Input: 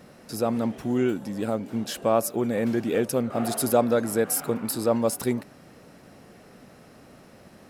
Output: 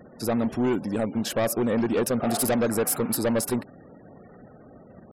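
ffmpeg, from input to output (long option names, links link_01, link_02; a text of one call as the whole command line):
ffmpeg -i in.wav -af "asoftclip=type=hard:threshold=-22.5dB,atempo=1.5,afftfilt=real='re*gte(hypot(re,im),0.00355)':imag='im*gte(hypot(re,im),0.00355)':win_size=1024:overlap=0.75,volume=3dB" out.wav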